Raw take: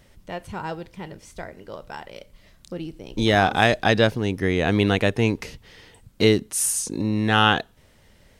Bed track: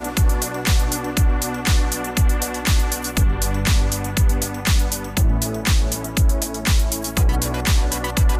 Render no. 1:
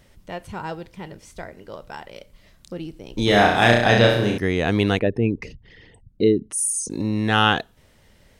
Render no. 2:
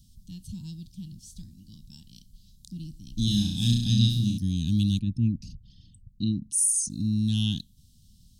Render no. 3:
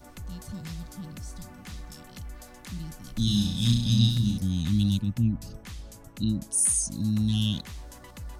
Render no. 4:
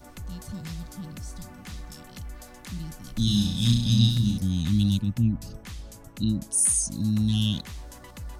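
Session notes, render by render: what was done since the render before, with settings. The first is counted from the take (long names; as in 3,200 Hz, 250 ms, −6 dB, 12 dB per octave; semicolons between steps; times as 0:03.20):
0:03.24–0:04.38: flutter between parallel walls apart 5.8 metres, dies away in 0.73 s; 0:04.99–0:06.90: spectral envelope exaggerated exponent 2
inverse Chebyshev band-stop filter 400–2,200 Hz, stop band 40 dB; parametric band 570 Hz −12.5 dB 0.39 octaves
mix in bed track −24 dB
level +1.5 dB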